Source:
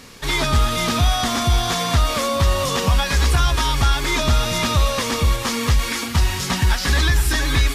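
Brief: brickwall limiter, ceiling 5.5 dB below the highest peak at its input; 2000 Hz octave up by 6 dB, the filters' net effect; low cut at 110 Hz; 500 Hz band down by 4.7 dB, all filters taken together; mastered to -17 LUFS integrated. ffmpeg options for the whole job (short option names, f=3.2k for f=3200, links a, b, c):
-af "highpass=110,equalizer=f=500:t=o:g=-6.5,equalizer=f=2k:t=o:g=7.5,volume=3dB,alimiter=limit=-7.5dB:level=0:latency=1"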